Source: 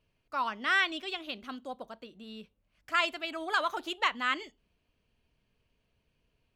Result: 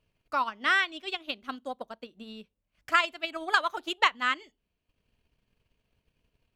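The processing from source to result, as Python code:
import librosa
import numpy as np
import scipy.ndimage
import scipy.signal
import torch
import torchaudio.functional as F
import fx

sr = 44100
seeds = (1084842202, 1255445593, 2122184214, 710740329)

y = fx.transient(x, sr, attack_db=7, sustain_db=-7)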